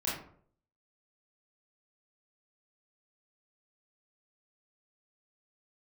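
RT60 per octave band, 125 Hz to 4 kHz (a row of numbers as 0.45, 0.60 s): 0.65, 0.60, 0.60, 0.50, 0.40, 0.30 s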